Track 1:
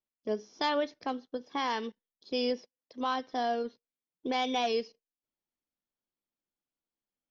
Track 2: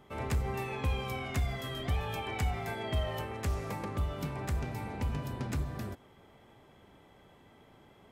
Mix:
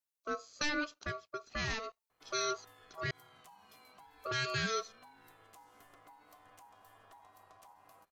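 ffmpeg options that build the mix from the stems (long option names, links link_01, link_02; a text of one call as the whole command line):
ffmpeg -i stem1.wav -i stem2.wav -filter_complex "[0:a]highshelf=frequency=3900:gain=10.5,volume=-3dB,asplit=3[link_01][link_02][link_03];[link_01]atrim=end=3.11,asetpts=PTS-STARTPTS,afade=type=out:start_time=3.106:duration=0.004:curve=hsin[link_04];[link_02]atrim=start=3.11:end=3.71,asetpts=PTS-STARTPTS,volume=0[link_05];[link_03]atrim=start=3.71,asetpts=PTS-STARTPTS,afade=type=in:duration=0.004:curve=hsin[link_06];[link_04][link_05][link_06]concat=n=3:v=0:a=1,asplit=2[link_07][link_08];[1:a]crystalizer=i=2:c=0,acompressor=threshold=-35dB:ratio=6,adelay=2100,volume=-18.5dB[link_09];[link_08]apad=whole_len=450342[link_10];[link_09][link_10]sidechaincompress=threshold=-34dB:ratio=8:attack=5.3:release=128[link_11];[link_07][link_11]amix=inputs=2:normalize=0,aeval=exprs='val(0)*sin(2*PI*890*n/s)':channel_layout=same" out.wav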